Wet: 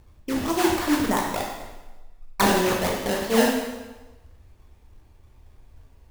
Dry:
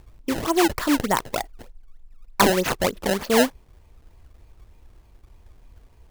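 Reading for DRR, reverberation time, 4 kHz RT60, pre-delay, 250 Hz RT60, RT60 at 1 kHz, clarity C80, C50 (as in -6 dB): -2.0 dB, 1.2 s, 1.0 s, 6 ms, 1.1 s, 1.2 s, 5.0 dB, 2.5 dB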